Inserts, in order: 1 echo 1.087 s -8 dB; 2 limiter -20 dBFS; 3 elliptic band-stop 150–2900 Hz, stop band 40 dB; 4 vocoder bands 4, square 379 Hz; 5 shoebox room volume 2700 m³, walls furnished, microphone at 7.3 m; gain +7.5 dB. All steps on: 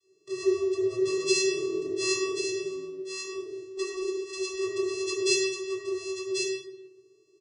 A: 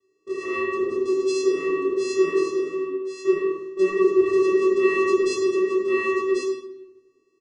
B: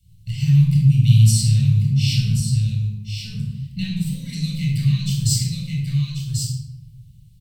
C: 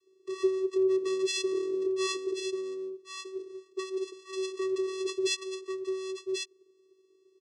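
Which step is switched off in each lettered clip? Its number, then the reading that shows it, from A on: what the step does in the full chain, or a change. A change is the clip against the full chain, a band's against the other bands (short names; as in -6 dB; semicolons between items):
3, 8 kHz band -15.5 dB; 4, 125 Hz band +35.0 dB; 5, 8 kHz band -5.5 dB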